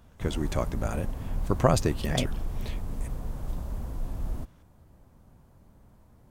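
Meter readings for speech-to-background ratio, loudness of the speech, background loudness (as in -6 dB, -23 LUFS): 8.0 dB, -29.5 LUFS, -37.5 LUFS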